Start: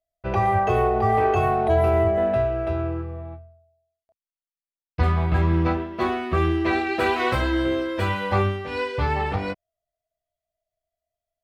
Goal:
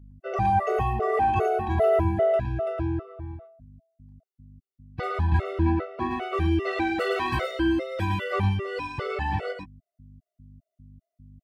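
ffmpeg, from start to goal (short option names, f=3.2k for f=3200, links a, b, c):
-filter_complex "[0:a]asettb=1/sr,asplit=3[a][b][c];[a]atrim=end=5.654[d];[b]atrim=start=5.65:end=6.11,asetpts=PTS-STARTPTS,afade=t=in:d=0.004:c=qsin,afade=t=out:st=0.456:d=0.004:c=qsin,highshelf=f=3.7k:g=-11.5[e];[c]atrim=start=6.106[f];[d][e]acrossfade=d=0.004:c1=hsin:c2=qsin[g];[g][f]acrossfade=d=0.004:c1=qsin:c2=hsin,aeval=exprs='val(0)+0.00631*(sin(2*PI*50*n/s)+sin(2*PI*2*50*n/s)/2+sin(2*PI*3*50*n/s)/3+sin(2*PI*4*50*n/s)/4+sin(2*PI*5*50*n/s)/5)':c=same,asplit=2[h][i];[i]aecho=0:1:112:0.596[j];[h][j]amix=inputs=2:normalize=0,afftfilt=real='re*gt(sin(2*PI*2.5*pts/sr)*(1-2*mod(floor(b*sr/1024/380),2)),0)':imag='im*gt(sin(2*PI*2.5*pts/sr)*(1-2*mod(floor(b*sr/1024/380),2)),0)':win_size=1024:overlap=0.75,volume=-2dB"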